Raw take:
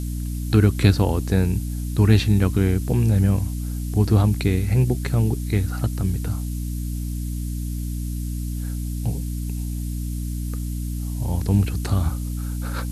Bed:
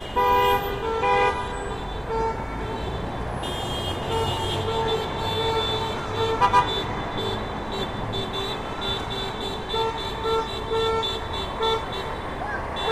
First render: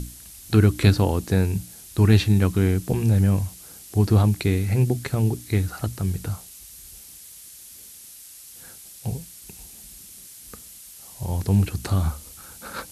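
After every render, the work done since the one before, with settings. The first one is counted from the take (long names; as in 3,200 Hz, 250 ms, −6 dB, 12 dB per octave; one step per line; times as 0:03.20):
mains-hum notches 60/120/180/240/300 Hz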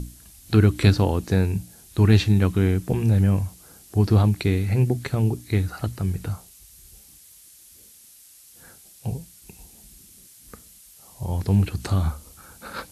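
noise reduction from a noise print 6 dB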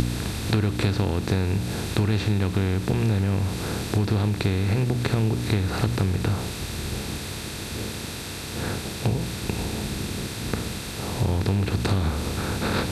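compressor on every frequency bin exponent 0.4
downward compressor, threshold −19 dBFS, peak gain reduction 10.5 dB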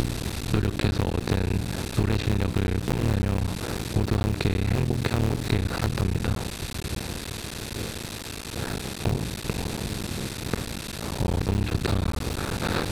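sub-harmonics by changed cycles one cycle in 3, muted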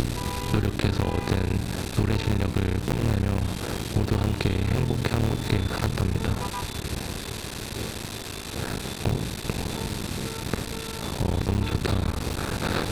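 mix in bed −17 dB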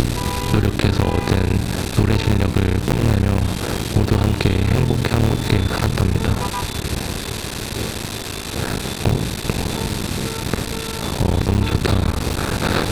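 level +7.5 dB
brickwall limiter −2 dBFS, peak gain reduction 3 dB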